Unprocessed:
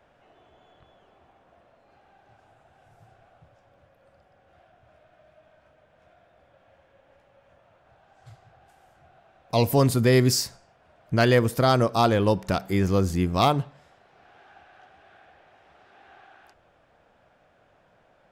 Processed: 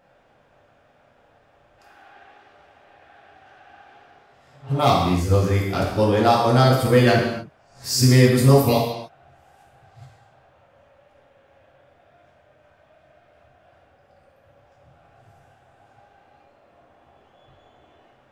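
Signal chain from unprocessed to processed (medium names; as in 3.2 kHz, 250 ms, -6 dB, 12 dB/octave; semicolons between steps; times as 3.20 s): reverse the whole clip; gated-style reverb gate 320 ms falling, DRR -3.5 dB; trim -1.5 dB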